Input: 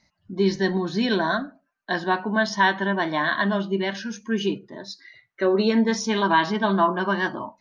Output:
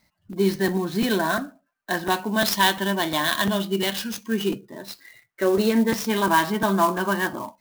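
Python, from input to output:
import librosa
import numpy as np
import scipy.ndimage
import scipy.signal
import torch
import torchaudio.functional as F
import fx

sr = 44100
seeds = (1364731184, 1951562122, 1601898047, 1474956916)

y = fx.high_shelf_res(x, sr, hz=2400.0, db=7.5, q=1.5, at=(2.1, 4.32))
y = fx.buffer_crackle(y, sr, first_s=0.32, period_s=0.35, block=256, kind='repeat')
y = fx.clock_jitter(y, sr, seeds[0], jitter_ms=0.027)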